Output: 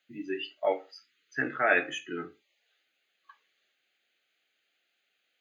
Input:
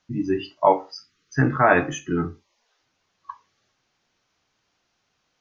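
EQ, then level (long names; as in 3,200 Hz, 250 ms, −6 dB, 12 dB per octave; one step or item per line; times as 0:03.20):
high-pass filter 530 Hz 12 dB per octave
high-shelf EQ 3,700 Hz +6.5 dB
phaser with its sweep stopped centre 2,400 Hz, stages 4
−1.5 dB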